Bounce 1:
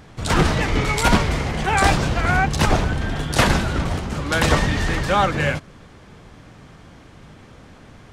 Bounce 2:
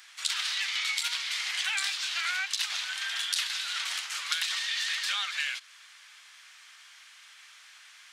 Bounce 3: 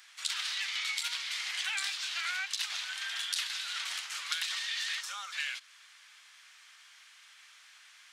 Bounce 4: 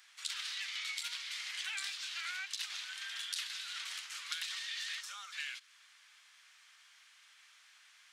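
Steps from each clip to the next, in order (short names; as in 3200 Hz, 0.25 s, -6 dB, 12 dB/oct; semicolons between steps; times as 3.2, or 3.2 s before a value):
Bessel high-pass 2400 Hz, order 4; dynamic EQ 3800 Hz, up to +8 dB, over -43 dBFS, Q 1.3; compressor 16:1, threshold -32 dBFS, peak gain reduction 18 dB; gain +5 dB
spectral gain 5.01–5.32, 1500–5100 Hz -10 dB; gain -4 dB
dynamic EQ 710 Hz, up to -6 dB, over -59 dBFS, Q 1.3; gain -5.5 dB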